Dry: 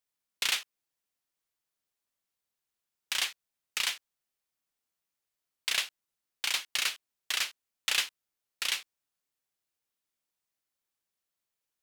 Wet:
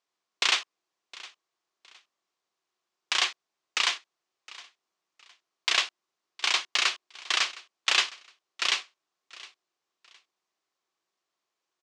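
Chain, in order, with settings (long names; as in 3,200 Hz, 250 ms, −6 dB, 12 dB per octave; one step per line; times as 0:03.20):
loudspeaker in its box 190–6,800 Hz, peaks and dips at 240 Hz −3 dB, 360 Hz +9 dB, 710 Hz +5 dB, 1,100 Hz +8 dB
repeating echo 713 ms, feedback 29%, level −20 dB
level +5 dB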